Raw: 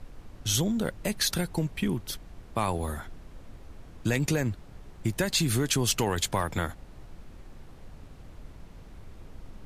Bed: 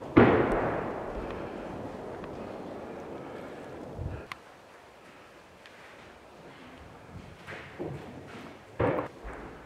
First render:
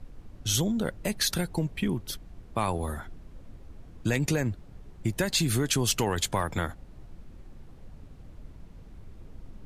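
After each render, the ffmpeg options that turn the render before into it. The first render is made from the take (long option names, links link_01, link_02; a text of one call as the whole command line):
ffmpeg -i in.wav -af "afftdn=noise_reduction=6:noise_floor=-49" out.wav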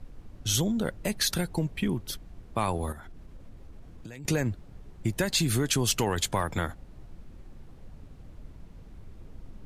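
ffmpeg -i in.wav -filter_complex "[0:a]asettb=1/sr,asplit=3[link_01][link_02][link_03];[link_01]atrim=end=2.924[link_04];[link_02]atrim=start=2.92:end=4.25,asetpts=PTS-STARTPTS,afade=type=in:duration=0.004:curve=qsin,afade=type=out:start_time=1.326:duration=0.004:curve=qsin,acompressor=threshold=-40dB:ratio=6:attack=3.2:release=140:knee=1:detection=peak[link_05];[link_03]atrim=start=4.246[link_06];[link_04][link_05]acrossfade=duration=0.004:curve1=hsin:curve2=qsin[link_07];[link_07][link_06]acrossfade=duration=0.004:curve1=qsin:curve2=hsin" out.wav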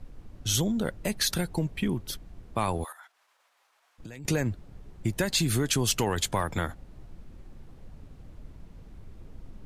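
ffmpeg -i in.wav -filter_complex "[0:a]asplit=3[link_01][link_02][link_03];[link_01]afade=type=out:start_time=2.83:duration=0.02[link_04];[link_02]highpass=frequency=870:width=0.5412,highpass=frequency=870:width=1.3066,afade=type=in:start_time=2.83:duration=0.02,afade=type=out:start_time=3.98:duration=0.02[link_05];[link_03]afade=type=in:start_time=3.98:duration=0.02[link_06];[link_04][link_05][link_06]amix=inputs=3:normalize=0" out.wav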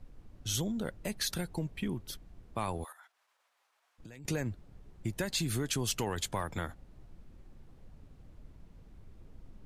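ffmpeg -i in.wav -af "volume=-7dB" out.wav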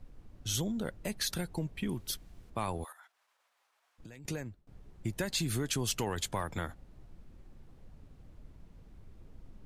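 ffmpeg -i in.wav -filter_complex "[0:a]asettb=1/sr,asplit=3[link_01][link_02][link_03];[link_01]atrim=end=1.884[link_04];[link_02]atrim=start=1.88:end=2.5,asetpts=PTS-STARTPTS,afade=type=in:duration=0.004:curve=qsin,afade=type=out:start_time=0.616:duration=0.004:curve=qsin,highshelf=frequency=2300:gain=8[link_05];[link_03]atrim=start=2.496[link_06];[link_04][link_05]acrossfade=duration=0.004:curve1=hsin:curve2=qsin[link_07];[link_07][link_06]acrossfade=duration=0.004:curve1=qsin:curve2=hsin,asplit=2[link_08][link_09];[link_08]atrim=end=4.67,asetpts=PTS-STARTPTS,afade=type=out:start_time=4.12:duration=0.55:silence=0.0707946[link_10];[link_09]atrim=start=4.67,asetpts=PTS-STARTPTS,afade=type=in:duration=0.004:curve=hsin:silence=0.0707946[link_11];[link_10][link_11]concat=n=2:v=0:a=1" out.wav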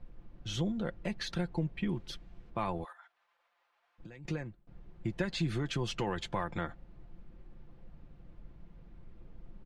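ffmpeg -i in.wav -af "lowpass=3200,aecho=1:1:5.8:0.46" out.wav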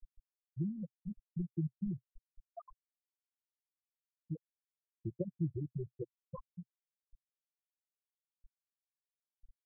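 ffmpeg -i in.wav -af "afftfilt=real='re*gte(hypot(re,im),0.158)':imag='im*gte(hypot(re,im),0.158)':win_size=1024:overlap=0.75,equalizer=frequency=125:width_type=o:width=0.33:gain=-4,equalizer=frequency=250:width_type=o:width=0.33:gain=-11,equalizer=frequency=1000:width_type=o:width=0.33:gain=-10" out.wav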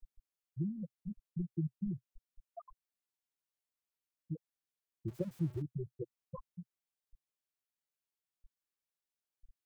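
ffmpeg -i in.wav -filter_complex "[0:a]asettb=1/sr,asplit=3[link_01][link_02][link_03];[link_01]atrim=end=5.084[link_04];[link_02]atrim=start=5.08:end=5.62,asetpts=PTS-STARTPTS,afade=type=in:duration=0.004:curve=qsin,afade=type=out:start_time=0.536:duration=0.004:curve=qsin,aeval=exprs='val(0)+0.5*0.00316*sgn(val(0))':channel_layout=same[link_05];[link_03]atrim=start=5.616[link_06];[link_04][link_05]acrossfade=duration=0.004:curve1=hsin:curve2=qsin[link_07];[link_07][link_06]acrossfade=duration=0.004:curve1=qsin:curve2=hsin" out.wav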